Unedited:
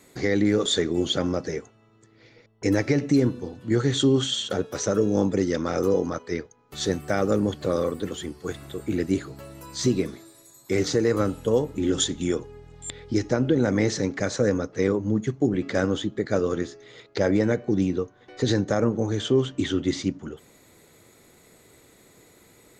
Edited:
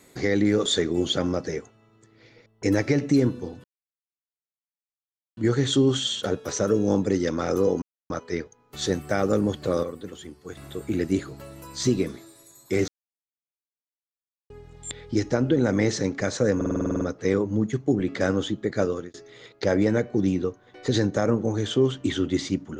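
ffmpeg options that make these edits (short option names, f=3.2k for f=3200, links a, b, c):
-filter_complex "[0:a]asplit=17[a][b][c][d][e][f][g][h][i][j][k][l][m][n][o][p][q];[a]atrim=end=3.64,asetpts=PTS-STARTPTS,afade=t=out:st=3.636:d=0.004:c=hsin,apad=pad_dur=1.73[r];[b]atrim=start=3.64:end=6.09,asetpts=PTS-STARTPTS,afade=t=in:d=0.004:c=hsin,afade=t=out:st=2.446:d=0.004:c=hsin,apad=pad_dur=0.28[s];[c]atrim=start=6.09:end=7.822,asetpts=PTS-STARTPTS,afade=t=in:d=0.004:c=hsin[t];[d]atrim=start=7.818:end=8.562,asetpts=PTS-STARTPTS,volume=-7.5dB[u];[e]atrim=start=8.558:end=10.87,asetpts=PTS-STARTPTS,afade=t=out:st=2.308:d=0.004:c=hsin[v];[f]atrim=start=10.87:end=12.49,asetpts=PTS-STARTPTS,volume=0[w];[g]atrim=start=12.49:end=14.602,asetpts=PTS-STARTPTS,afade=t=in:d=0.004:c=hsin[x];[h]atrim=start=14.548:end=14.602[y];[i]atrim=start=14.548:end=14.602[z];[j]atrim=start=14.548:end=14.602[aa];[k]atrim=start=14.548:end=14.602[ab];[l]atrim=start=14.548:end=14.602[ac];[m]atrim=start=14.548:end=14.602[ad];[n]atrim=start=14.548:end=14.602[ae];[o]atrim=start=14.548:end=14.602[af];[p]atrim=start=14.548:end=16.68,asetpts=PTS-STARTPTS,afade=t=out:st=1.822:d=0.31[ag];[q]atrim=start=16.68,asetpts=PTS-STARTPTS,afade=t=in:d=0.004:c=hsin[ah];[r][s][t]concat=n=3:v=0:a=1[ai];[ai][u]acrossfade=d=0.004:c1=hsin:c2=hsin[aj];[v][w][x]concat=n=3:v=0:a=1[ak];[aj][ak]acrossfade=d=0.004:c1=hsin:c2=hsin[al];[al][y]acrossfade=d=0.004:c1=hsin:c2=hsin[am];[am][z]acrossfade=d=0.004:c1=hsin:c2=hsin[an];[an][aa]acrossfade=d=0.004:c1=hsin:c2=hsin[ao];[ao][ab]acrossfade=d=0.004:c1=hsin:c2=hsin[ap];[ap][ac]acrossfade=d=0.004:c1=hsin:c2=hsin[aq];[aq][ad]acrossfade=d=0.004:c1=hsin:c2=hsin[ar];[ar][ae]acrossfade=d=0.004:c1=hsin:c2=hsin[as];[as][af]acrossfade=d=0.004:c1=hsin:c2=hsin[at];[ag][ah]concat=n=2:v=0:a=1[au];[at][au]acrossfade=d=0.004:c1=hsin:c2=hsin"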